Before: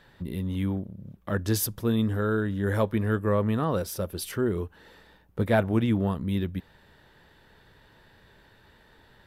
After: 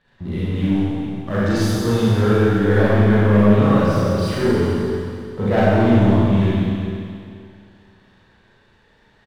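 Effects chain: coarse spectral quantiser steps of 15 dB; low-pass 4.3 kHz 12 dB/octave; waveshaping leveller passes 2; on a send: delay 381 ms -14.5 dB; on the sum: Schroeder reverb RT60 2.3 s, combs from 30 ms, DRR -9.5 dB; trim -4.5 dB

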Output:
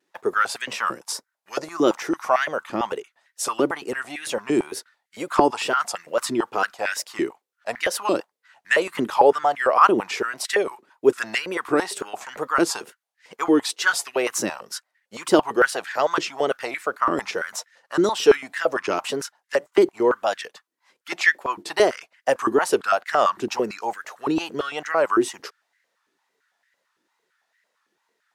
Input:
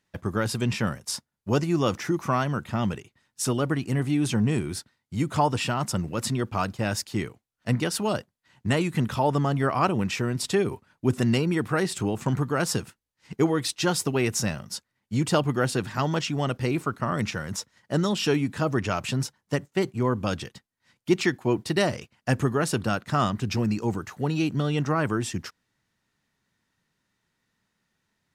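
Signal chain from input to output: 1.12–1.84 s: dynamic bell 2.8 kHz, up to -7 dB, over -52 dBFS, Q 1.8; wow and flutter 100 cents; step-sequenced high-pass 8.9 Hz 340–1800 Hz; trim +1.5 dB

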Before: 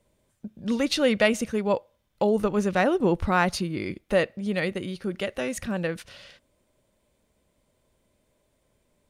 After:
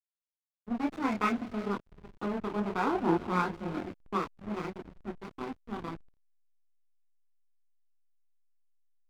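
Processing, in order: comb filter that takes the minimum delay 0.84 ms; Chebyshev band-pass 290–1700 Hz, order 2; gated-style reverb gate 430 ms rising, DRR 9.5 dB; chorus voices 4, 1 Hz, delay 27 ms, depth 3 ms; level-controlled noise filter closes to 530 Hz, open at -25.5 dBFS; 1.28–2.50 s: dynamic bell 900 Hz, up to -7 dB, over -46 dBFS, Q 2.6; hysteresis with a dead band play -31.5 dBFS

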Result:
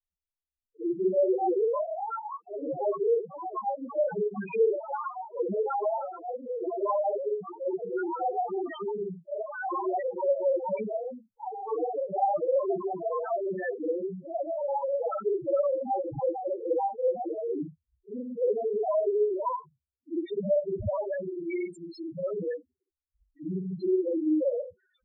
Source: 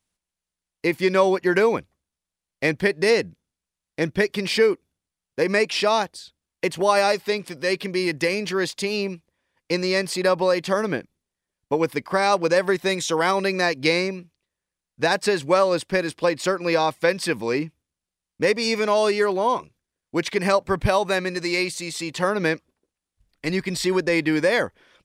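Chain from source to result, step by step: short-time spectra conjugated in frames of 129 ms; ever faster or slower copies 545 ms, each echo +5 st, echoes 3; loudest bins only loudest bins 2

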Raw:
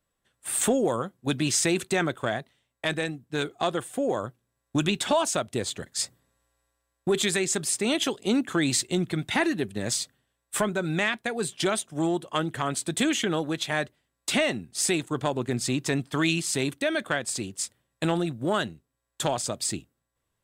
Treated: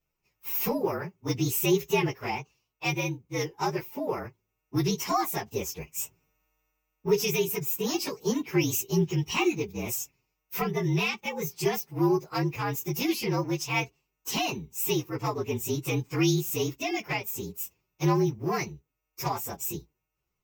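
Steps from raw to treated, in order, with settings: frequency axis rescaled in octaves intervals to 116%; rippled EQ curve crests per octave 0.74, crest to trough 9 dB

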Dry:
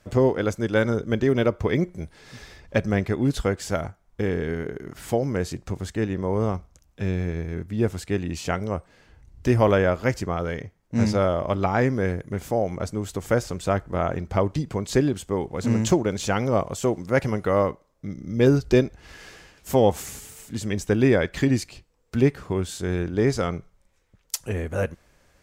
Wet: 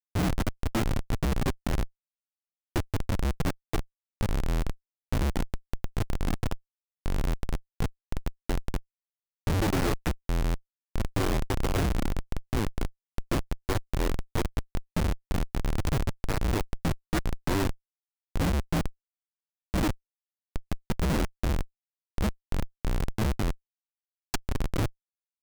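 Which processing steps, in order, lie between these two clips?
frequency shift -210 Hz; Schmitt trigger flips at -21 dBFS

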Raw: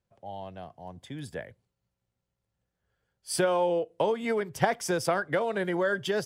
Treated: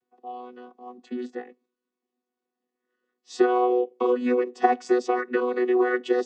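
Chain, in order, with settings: vocoder on a held chord bare fifth, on B3; trim +5.5 dB

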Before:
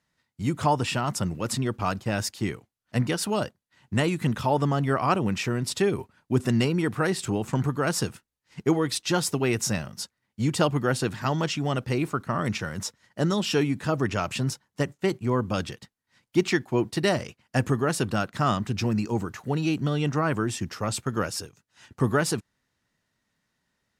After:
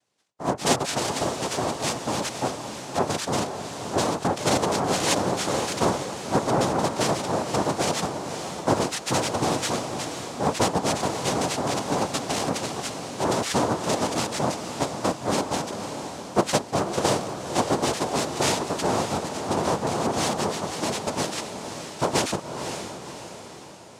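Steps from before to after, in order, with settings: noise-vocoded speech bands 2; echo that smears into a reverb 529 ms, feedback 51%, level -7.5 dB

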